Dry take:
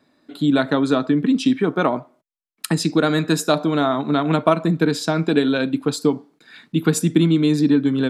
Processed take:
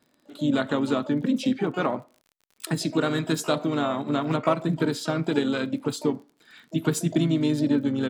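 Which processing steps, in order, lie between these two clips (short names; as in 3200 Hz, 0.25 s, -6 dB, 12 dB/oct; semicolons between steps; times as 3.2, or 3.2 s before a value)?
harmoniser -3 st -9 dB, +12 st -16 dB; crackle 43/s -37 dBFS; gain -7 dB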